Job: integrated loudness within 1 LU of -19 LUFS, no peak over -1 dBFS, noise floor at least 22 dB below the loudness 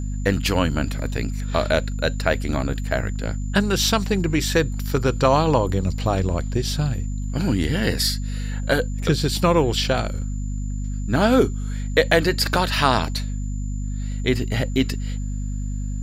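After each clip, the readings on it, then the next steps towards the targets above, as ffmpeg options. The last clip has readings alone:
hum 50 Hz; harmonics up to 250 Hz; hum level -24 dBFS; steady tone 7100 Hz; tone level -46 dBFS; loudness -22.5 LUFS; peak -2.0 dBFS; loudness target -19.0 LUFS
-> -af "bandreject=f=50:t=h:w=4,bandreject=f=100:t=h:w=4,bandreject=f=150:t=h:w=4,bandreject=f=200:t=h:w=4,bandreject=f=250:t=h:w=4"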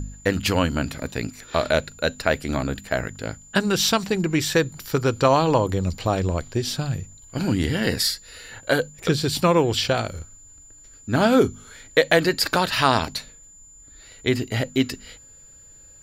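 hum none; steady tone 7100 Hz; tone level -46 dBFS
-> -af "bandreject=f=7.1k:w=30"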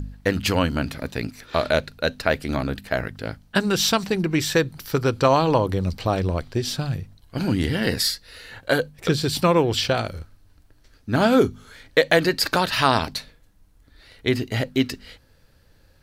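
steady tone none; loudness -22.5 LUFS; peak -2.5 dBFS; loudness target -19.0 LUFS
-> -af "volume=3.5dB,alimiter=limit=-1dB:level=0:latency=1"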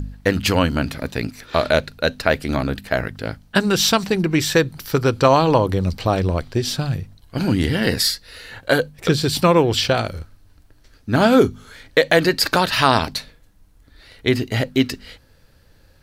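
loudness -19.0 LUFS; peak -1.0 dBFS; noise floor -53 dBFS

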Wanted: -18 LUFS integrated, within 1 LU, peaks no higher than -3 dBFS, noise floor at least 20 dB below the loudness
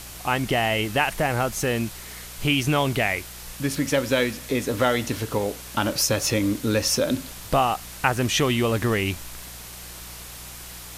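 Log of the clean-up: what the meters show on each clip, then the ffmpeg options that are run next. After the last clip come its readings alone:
hum 60 Hz; harmonics up to 180 Hz; hum level -45 dBFS; noise floor -40 dBFS; noise floor target -44 dBFS; loudness -23.5 LUFS; peak -4.5 dBFS; loudness target -18.0 LUFS
-> -af "bandreject=f=60:t=h:w=4,bandreject=f=120:t=h:w=4,bandreject=f=180:t=h:w=4"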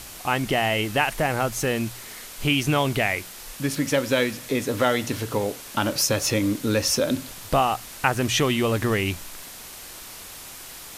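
hum none; noise floor -41 dBFS; noise floor target -44 dBFS
-> -af "afftdn=nr=6:nf=-41"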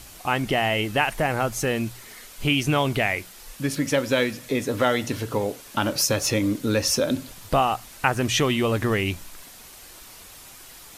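noise floor -45 dBFS; loudness -24.0 LUFS; peak -4.0 dBFS; loudness target -18.0 LUFS
-> -af "volume=6dB,alimiter=limit=-3dB:level=0:latency=1"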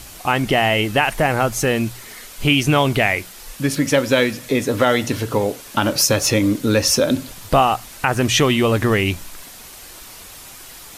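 loudness -18.0 LUFS; peak -3.0 dBFS; noise floor -39 dBFS

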